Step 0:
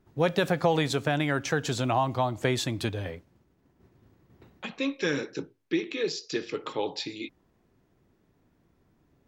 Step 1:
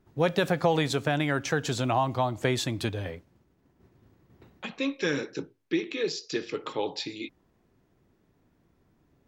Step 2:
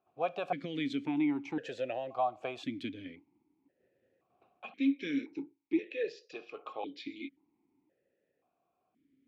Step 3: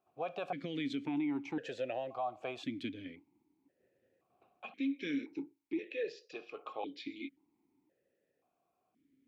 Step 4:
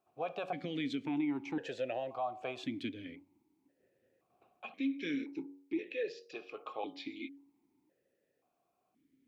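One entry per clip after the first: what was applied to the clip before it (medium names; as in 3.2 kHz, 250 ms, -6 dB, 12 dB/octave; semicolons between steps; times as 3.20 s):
no audible change
stepped vowel filter 1.9 Hz; trim +3 dB
peak limiter -27 dBFS, peak gain reduction 7 dB; trim -1 dB
de-hum 93.47 Hz, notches 13; trim +1 dB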